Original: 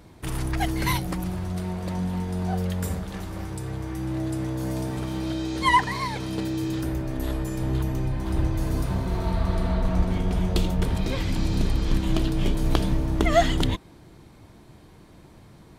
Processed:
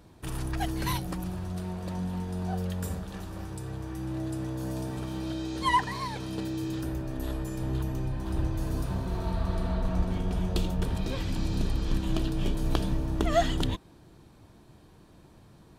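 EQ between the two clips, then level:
notch filter 2,100 Hz, Q 8.8
−5.0 dB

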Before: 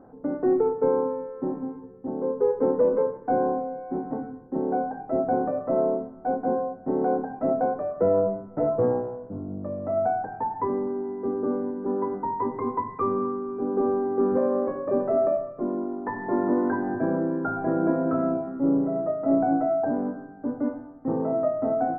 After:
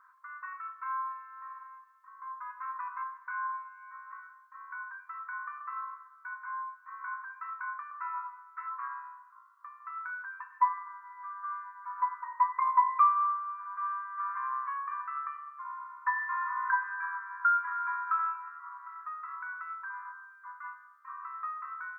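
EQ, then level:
linear-phase brick-wall high-pass 970 Hz
+6.5 dB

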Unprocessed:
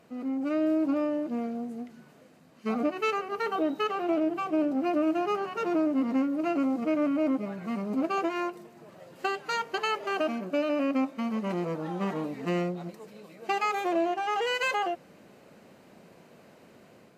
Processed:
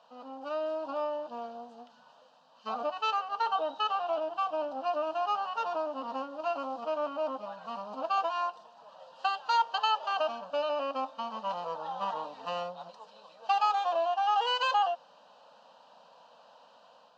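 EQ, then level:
loudspeaker in its box 480–4,500 Hz, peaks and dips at 510 Hz +4 dB, 930 Hz +8 dB, 3,000 Hz +6 dB
high-shelf EQ 2,900 Hz +10 dB
phaser with its sweep stopped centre 890 Hz, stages 4
0.0 dB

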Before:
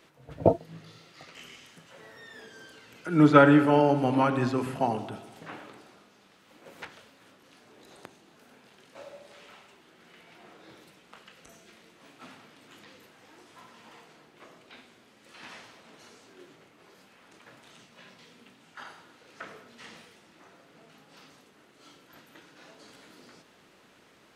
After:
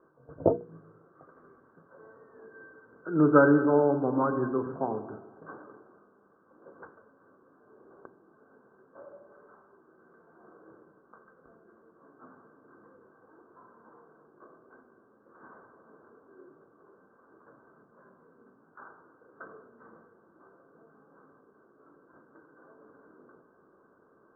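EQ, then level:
Chebyshev low-pass with heavy ripple 1,600 Hz, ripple 9 dB
mains-hum notches 60/120/180/240/300/360/420/480 Hz
+2.5 dB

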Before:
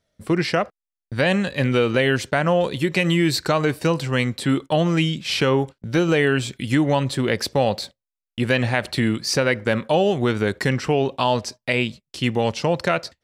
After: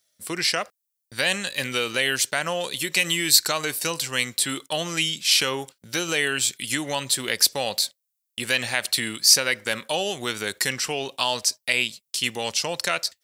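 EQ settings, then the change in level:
spectral tilt +3.5 dB per octave
high-shelf EQ 4,000 Hz +10.5 dB
−6.0 dB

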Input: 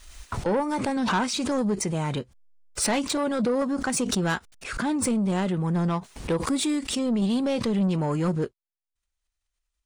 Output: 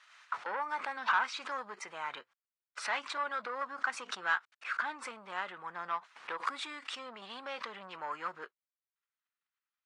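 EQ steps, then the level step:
four-pole ladder band-pass 1,600 Hz, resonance 35%
+8.0 dB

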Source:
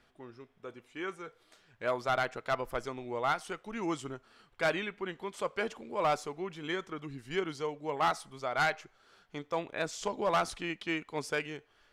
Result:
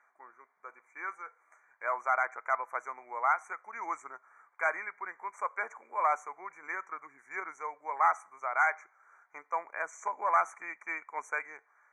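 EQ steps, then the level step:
high-pass with resonance 1,000 Hz, resonance Q 2
linear-phase brick-wall band-stop 2,400–5,800 Hz
high-frequency loss of the air 77 metres
0.0 dB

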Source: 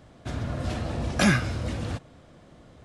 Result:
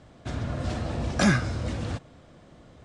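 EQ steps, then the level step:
Butterworth low-pass 9,300 Hz 36 dB per octave
dynamic equaliser 2,700 Hz, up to −6 dB, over −45 dBFS, Q 1.9
0.0 dB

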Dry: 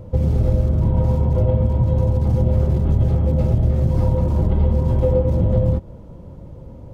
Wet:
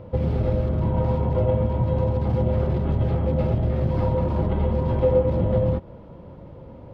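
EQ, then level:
high-frequency loss of the air 380 metres
spectral tilt +3 dB per octave
+4.5 dB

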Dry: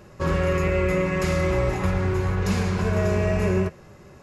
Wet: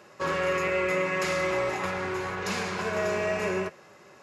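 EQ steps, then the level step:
meter weighting curve A
0.0 dB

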